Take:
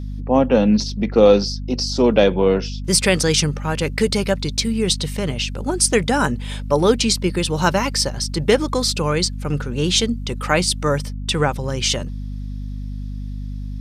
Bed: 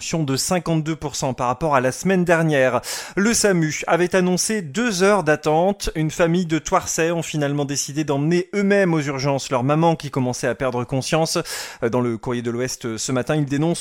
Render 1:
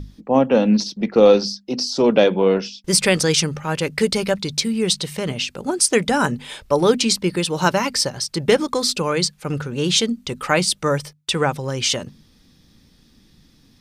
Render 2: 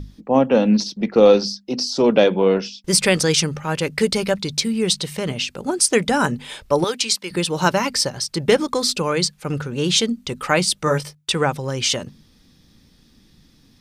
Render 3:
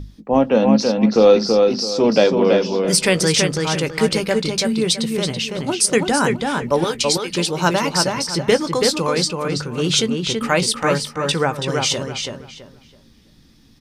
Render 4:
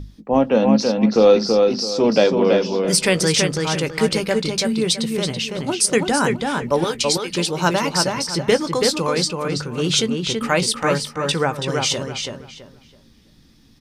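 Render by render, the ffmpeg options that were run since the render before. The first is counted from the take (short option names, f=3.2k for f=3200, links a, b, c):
-af "bandreject=f=50:t=h:w=6,bandreject=f=100:t=h:w=6,bandreject=f=150:t=h:w=6,bandreject=f=200:t=h:w=6,bandreject=f=250:t=h:w=6"
-filter_complex "[0:a]asettb=1/sr,asplit=3[a][b][c];[a]atrim=end=6.844[d];[b]atrim=start=6.84:end=7.31,asetpts=PTS-STARTPTS,afade=t=in:d=0.004:c=qsin,afade=t=out:st=0.466:d=0.004:c=qsin,highpass=f=1.3k:p=1[e];[c]atrim=start=7.306[f];[d][e]acrossfade=d=0.004:c1=hsin:c2=qsin[g];[g][f]acrossfade=d=0.004:c1=qsin:c2=hsin,asettb=1/sr,asplit=3[h][i][j];[h]atrim=end=10.854[k];[i]atrim=start=10.85:end=11.32,asetpts=PTS-STARTPTS,afade=t=in:d=0.004:c=qsin,afade=t=out:st=0.466:d=0.004:c=qsin,asplit=2[l][m];[m]adelay=19,volume=-5dB[n];[l][n]amix=inputs=2:normalize=0,atrim=end_sample=20727[o];[j]atrim=start=11.316[p];[k][o]acrossfade=d=0.004:c1=hsin:c2=qsin[q];[q][p]acrossfade=d=0.004:c1=qsin:c2=hsin"
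-filter_complex "[0:a]asplit=2[a][b];[b]adelay=18,volume=-14dB[c];[a][c]amix=inputs=2:normalize=0,asplit=2[d][e];[e]adelay=330,lowpass=f=4.3k:p=1,volume=-3.5dB,asplit=2[f][g];[g]adelay=330,lowpass=f=4.3k:p=1,volume=0.27,asplit=2[h][i];[i]adelay=330,lowpass=f=4.3k:p=1,volume=0.27,asplit=2[j][k];[k]adelay=330,lowpass=f=4.3k:p=1,volume=0.27[l];[f][h][j][l]amix=inputs=4:normalize=0[m];[d][m]amix=inputs=2:normalize=0"
-af "volume=-1dB"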